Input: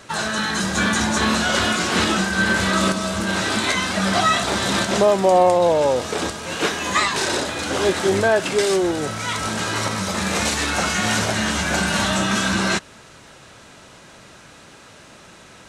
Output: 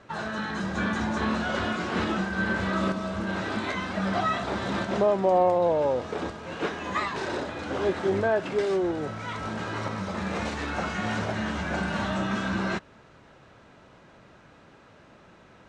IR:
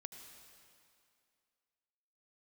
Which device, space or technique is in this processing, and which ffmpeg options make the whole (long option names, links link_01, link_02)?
through cloth: -af "lowpass=7400,highshelf=frequency=3300:gain=-17.5,volume=-6dB"